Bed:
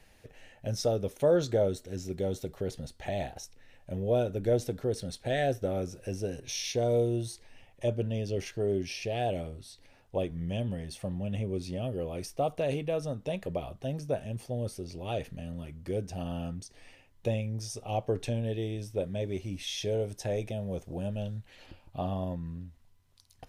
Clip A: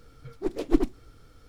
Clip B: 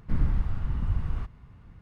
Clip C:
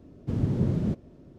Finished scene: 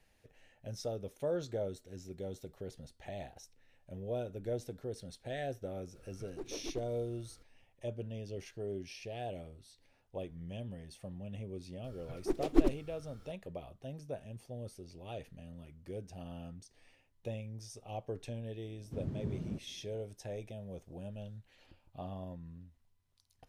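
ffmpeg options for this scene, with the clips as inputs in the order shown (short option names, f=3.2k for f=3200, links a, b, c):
-filter_complex "[1:a]asplit=2[a][b];[0:a]volume=-10.5dB[c];[a]acompressor=threshold=-29dB:ratio=6:attack=3.2:release=140:knee=1:detection=peak,atrim=end=1.48,asetpts=PTS-STARTPTS,volume=-8.5dB,afade=t=in:d=0.004:c=hsin,afade=t=out:st=1.476:d=0.004:c=hsin,adelay=5950[d];[b]atrim=end=1.48,asetpts=PTS-STARTPTS,volume=-4dB,afade=t=in:d=0.004:c=hsin,afade=t=out:st=1.476:d=0.004:c=hsin,adelay=11840[e];[3:a]atrim=end=1.38,asetpts=PTS-STARTPTS,volume=-13.5dB,afade=t=in:d=0.004:c=hsin,afade=t=out:st=1.376:d=0.004:c=hsin,adelay=18640[f];[c][d][e][f]amix=inputs=4:normalize=0"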